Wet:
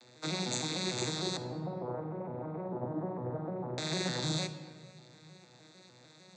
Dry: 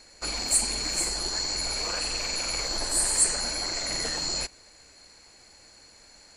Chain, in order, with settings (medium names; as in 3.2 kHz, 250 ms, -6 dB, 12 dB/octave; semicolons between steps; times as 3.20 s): vocoder on a broken chord major triad, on B2, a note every 151 ms; 1.37–3.78 s: low-pass 1 kHz 24 dB/octave; simulated room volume 2000 m³, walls mixed, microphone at 0.77 m; trim -5 dB